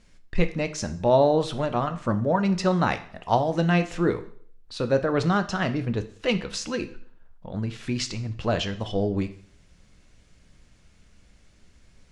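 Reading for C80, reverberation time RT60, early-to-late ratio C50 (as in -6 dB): 18.0 dB, 0.60 s, 14.5 dB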